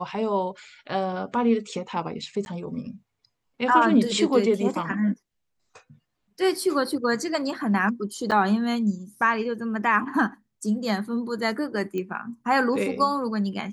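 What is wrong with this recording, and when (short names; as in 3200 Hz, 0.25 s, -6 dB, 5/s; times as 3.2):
2.45–2.46 gap
8.31–8.32 gap 7.6 ms
11.98 pop -19 dBFS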